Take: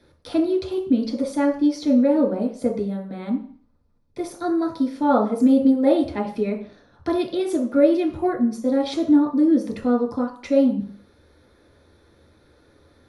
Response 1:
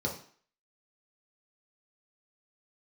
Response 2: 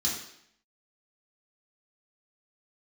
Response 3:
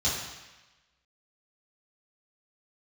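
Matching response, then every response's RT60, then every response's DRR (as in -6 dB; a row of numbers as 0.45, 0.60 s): 1; 0.50, 0.70, 1.1 s; -2.5, -5.5, -8.5 dB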